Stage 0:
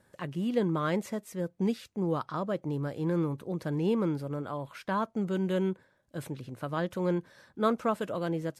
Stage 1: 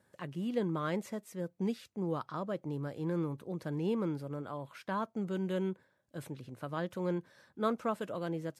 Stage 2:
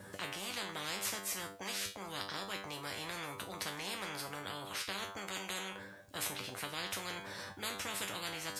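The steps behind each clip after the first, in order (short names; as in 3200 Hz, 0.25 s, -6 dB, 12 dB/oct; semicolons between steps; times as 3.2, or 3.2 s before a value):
HPF 75 Hz; gain -5 dB
resonator 98 Hz, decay 0.28 s, harmonics all, mix 90%; spectral compressor 10:1; gain +6 dB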